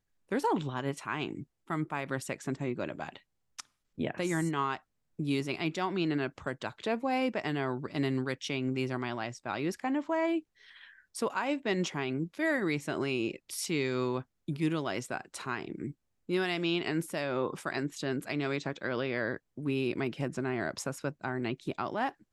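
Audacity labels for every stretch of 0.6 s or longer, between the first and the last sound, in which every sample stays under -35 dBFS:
10.390000	11.160000	silence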